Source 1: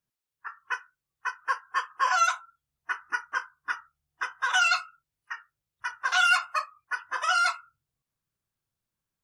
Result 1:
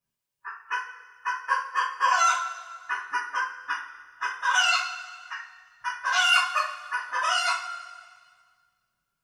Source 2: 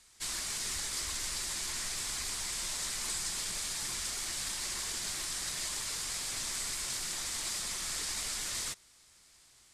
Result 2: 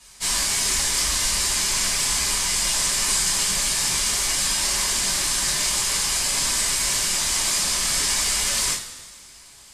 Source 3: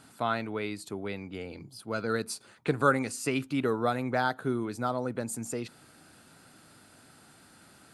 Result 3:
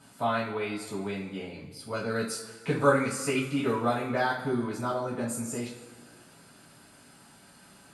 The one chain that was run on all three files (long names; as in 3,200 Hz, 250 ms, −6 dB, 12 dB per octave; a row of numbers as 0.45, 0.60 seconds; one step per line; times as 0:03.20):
coupled-rooms reverb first 0.36 s, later 1.8 s, from −16 dB, DRR −8 dB
normalise the peak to −9 dBFS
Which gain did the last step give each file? −5.5, +6.0, −6.5 decibels